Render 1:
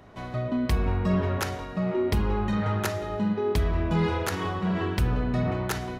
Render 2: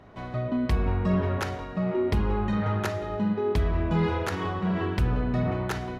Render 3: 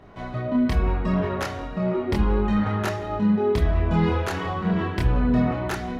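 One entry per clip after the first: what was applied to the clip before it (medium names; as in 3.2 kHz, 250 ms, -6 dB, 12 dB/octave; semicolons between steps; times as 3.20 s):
low-pass 3.5 kHz 6 dB/octave
chorus voices 6, 0.39 Hz, delay 26 ms, depth 3 ms; trim +6 dB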